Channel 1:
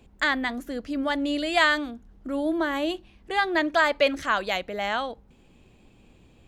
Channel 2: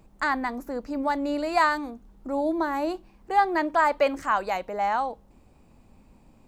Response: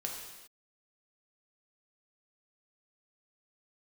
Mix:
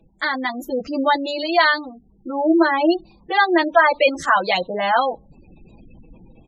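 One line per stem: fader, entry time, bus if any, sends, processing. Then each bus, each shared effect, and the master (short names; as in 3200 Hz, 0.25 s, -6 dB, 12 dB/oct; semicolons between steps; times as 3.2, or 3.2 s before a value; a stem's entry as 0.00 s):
-2.5 dB, 0.00 s, no send, reverb removal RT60 0.88 s; comb 6.1 ms, depth 70%
-2.5 dB, 12 ms, no send, resonant high shelf 3000 Hz +7 dB, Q 3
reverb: off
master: spectral gate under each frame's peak -20 dB strong; AGC gain up to 10 dB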